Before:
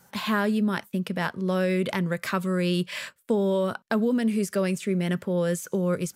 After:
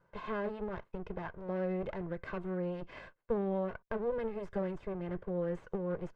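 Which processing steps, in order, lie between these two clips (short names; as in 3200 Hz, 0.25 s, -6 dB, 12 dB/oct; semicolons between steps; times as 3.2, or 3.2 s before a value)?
minimum comb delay 1.9 ms; LPF 1500 Hz 12 dB/oct; gain -7.5 dB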